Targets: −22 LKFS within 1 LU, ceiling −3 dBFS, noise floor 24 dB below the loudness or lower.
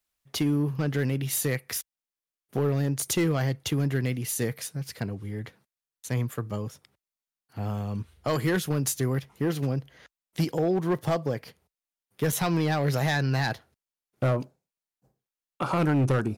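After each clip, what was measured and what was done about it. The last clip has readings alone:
share of clipped samples 1.0%; peaks flattened at −18.5 dBFS; number of dropouts 2; longest dropout 4.6 ms; integrated loudness −28.0 LKFS; sample peak −18.5 dBFS; target loudness −22.0 LKFS
→ clipped peaks rebuilt −18.5 dBFS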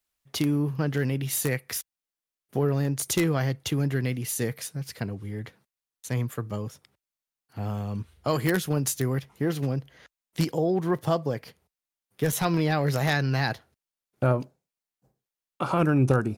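share of clipped samples 0.0%; number of dropouts 2; longest dropout 4.6 ms
→ repair the gap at 0:06.04/0:12.32, 4.6 ms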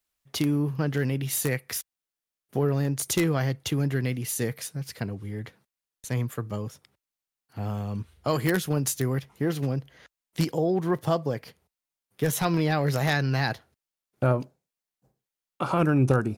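number of dropouts 0; integrated loudness −27.5 LKFS; sample peak −9.5 dBFS; target loudness −22.0 LKFS
→ level +5.5 dB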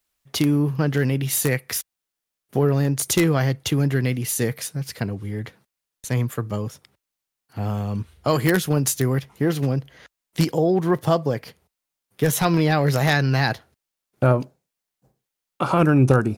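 integrated loudness −22.0 LKFS; sample peak −4.0 dBFS; background noise floor −84 dBFS

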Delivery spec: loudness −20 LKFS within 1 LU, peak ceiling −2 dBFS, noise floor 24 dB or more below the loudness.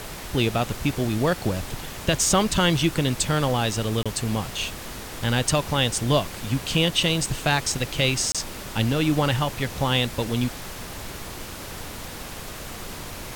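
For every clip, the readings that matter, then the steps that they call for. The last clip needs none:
number of dropouts 2; longest dropout 26 ms; background noise floor −37 dBFS; target noise floor −48 dBFS; integrated loudness −23.5 LKFS; sample peak −6.0 dBFS; target loudness −20.0 LKFS
→ repair the gap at 0:04.03/0:08.32, 26 ms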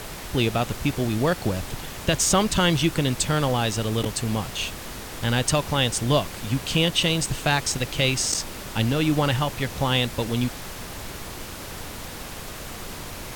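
number of dropouts 0; background noise floor −37 dBFS; target noise floor −48 dBFS
→ noise reduction from a noise print 11 dB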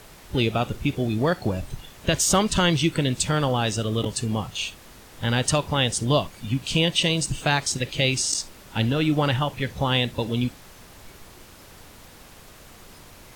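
background noise floor −48 dBFS; integrated loudness −24.0 LKFS; sample peak −6.5 dBFS; target loudness −20.0 LKFS
→ level +4 dB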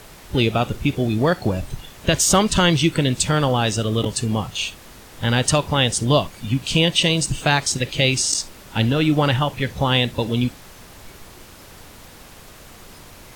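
integrated loudness −20.0 LKFS; sample peak −2.5 dBFS; background noise floor −44 dBFS

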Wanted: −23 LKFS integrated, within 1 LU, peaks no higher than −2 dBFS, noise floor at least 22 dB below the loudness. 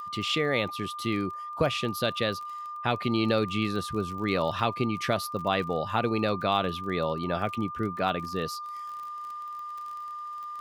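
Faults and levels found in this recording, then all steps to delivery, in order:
crackle rate 32 per second; interfering tone 1,200 Hz; level of the tone −35 dBFS; integrated loudness −29.5 LKFS; sample peak −10.0 dBFS; target loudness −23.0 LKFS
→ click removal
notch filter 1,200 Hz, Q 30
level +6.5 dB

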